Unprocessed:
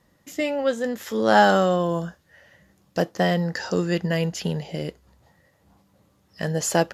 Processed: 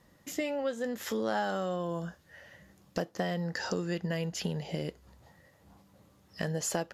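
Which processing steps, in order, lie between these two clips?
compressor 4:1, threshold -31 dBFS, peak gain reduction 17 dB

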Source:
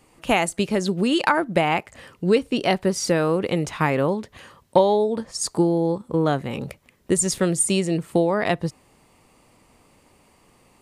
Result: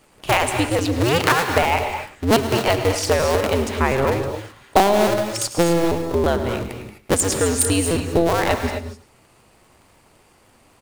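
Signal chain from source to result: cycle switcher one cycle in 2, inverted; on a send: echo 0.106 s -16 dB; on the sum: non-linear reverb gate 0.28 s rising, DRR 6 dB; gain +1.5 dB

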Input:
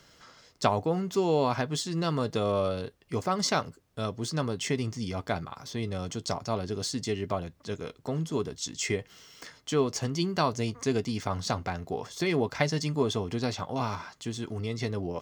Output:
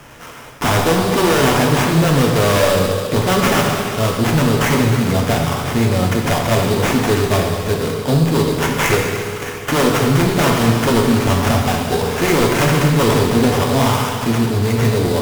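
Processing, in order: multi-head echo 70 ms, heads all three, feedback 74%, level -20 dB; sample-rate reducer 4300 Hz, jitter 20%; sine folder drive 15 dB, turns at -9.5 dBFS; non-linear reverb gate 0.44 s falling, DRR 0.5 dB; gain -3 dB

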